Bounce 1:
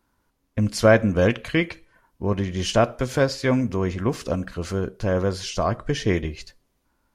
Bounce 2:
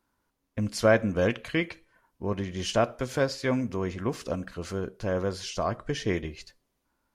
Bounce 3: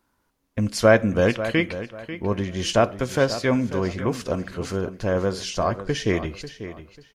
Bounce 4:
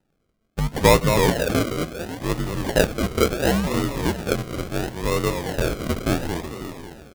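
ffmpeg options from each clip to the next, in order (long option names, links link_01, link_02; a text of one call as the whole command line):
ffmpeg -i in.wav -af "lowshelf=frequency=130:gain=-5.5,volume=-5dB" out.wav
ffmpeg -i in.wav -filter_complex "[0:a]asplit=2[link_01][link_02];[link_02]adelay=542,lowpass=frequency=5000:poles=1,volume=-12.5dB,asplit=2[link_03][link_04];[link_04]adelay=542,lowpass=frequency=5000:poles=1,volume=0.27,asplit=2[link_05][link_06];[link_06]adelay=542,lowpass=frequency=5000:poles=1,volume=0.27[link_07];[link_01][link_03][link_05][link_07]amix=inputs=4:normalize=0,volume=5.5dB" out.wav
ffmpeg -i in.wav -filter_complex "[0:a]asplit=6[link_01][link_02][link_03][link_04][link_05][link_06];[link_02]adelay=221,afreqshift=43,volume=-7dB[link_07];[link_03]adelay=442,afreqshift=86,volume=-14.7dB[link_08];[link_04]adelay=663,afreqshift=129,volume=-22.5dB[link_09];[link_05]adelay=884,afreqshift=172,volume=-30.2dB[link_10];[link_06]adelay=1105,afreqshift=215,volume=-38dB[link_11];[link_01][link_07][link_08][link_09][link_10][link_11]amix=inputs=6:normalize=0,afreqshift=-61,acrusher=samples=39:mix=1:aa=0.000001:lfo=1:lforange=23.4:lforate=0.72" out.wav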